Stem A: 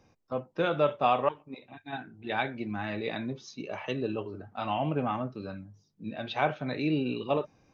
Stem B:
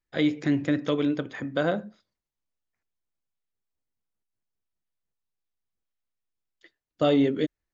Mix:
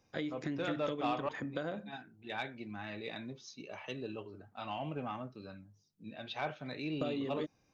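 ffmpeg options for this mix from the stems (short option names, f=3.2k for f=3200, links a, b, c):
-filter_complex "[0:a]highshelf=f=2.8k:g=8,asoftclip=type=tanh:threshold=-15dB,volume=-10dB[a];[1:a]agate=range=-33dB:threshold=-47dB:ratio=3:detection=peak,acompressor=threshold=-29dB:ratio=10,volume=-5.5dB[b];[a][b]amix=inputs=2:normalize=0"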